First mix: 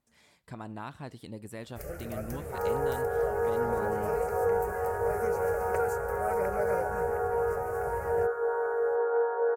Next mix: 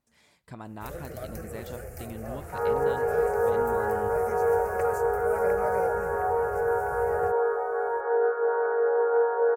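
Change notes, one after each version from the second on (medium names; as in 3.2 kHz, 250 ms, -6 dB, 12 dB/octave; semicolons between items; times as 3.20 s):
first sound: entry -0.95 s; second sound +4.0 dB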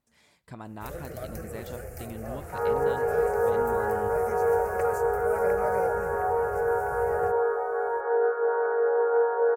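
reverb: on, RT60 0.50 s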